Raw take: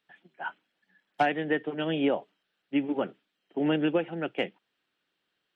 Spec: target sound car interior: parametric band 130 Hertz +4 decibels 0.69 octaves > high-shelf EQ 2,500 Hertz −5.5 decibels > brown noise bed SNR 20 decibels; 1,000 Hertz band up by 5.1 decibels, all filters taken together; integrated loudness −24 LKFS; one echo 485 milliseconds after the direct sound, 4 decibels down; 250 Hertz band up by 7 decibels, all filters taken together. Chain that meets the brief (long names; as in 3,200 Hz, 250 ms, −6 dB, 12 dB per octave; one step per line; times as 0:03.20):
parametric band 130 Hz +4 dB 0.69 octaves
parametric band 250 Hz +8 dB
parametric band 1,000 Hz +8 dB
high-shelf EQ 2,500 Hz −5.5 dB
single-tap delay 485 ms −4 dB
brown noise bed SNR 20 dB
level −0.5 dB